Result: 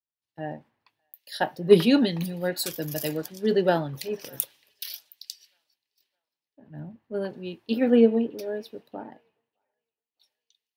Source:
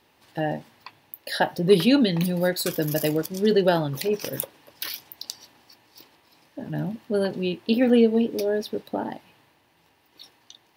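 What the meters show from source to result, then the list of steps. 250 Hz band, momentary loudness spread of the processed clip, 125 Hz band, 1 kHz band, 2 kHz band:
-2.5 dB, 22 LU, -5.0 dB, -3.0 dB, -4.0 dB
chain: feedback echo behind a band-pass 614 ms, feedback 65%, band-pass 1.5 kHz, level -17 dB; three bands expanded up and down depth 100%; trim -6.5 dB

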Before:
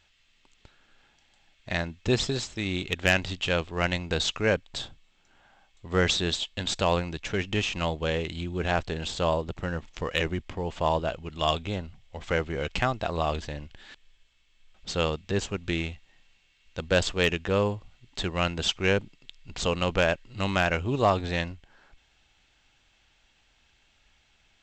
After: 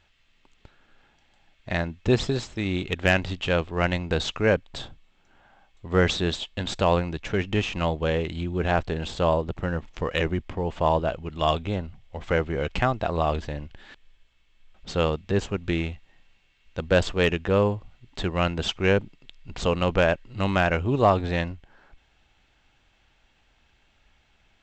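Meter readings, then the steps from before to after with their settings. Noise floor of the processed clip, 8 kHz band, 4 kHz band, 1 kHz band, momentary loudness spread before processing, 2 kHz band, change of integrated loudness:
-64 dBFS, -5.0 dB, -2.0 dB, +3.0 dB, 10 LU, +1.0 dB, +2.5 dB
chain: treble shelf 2.9 kHz -10.5 dB; trim +4 dB

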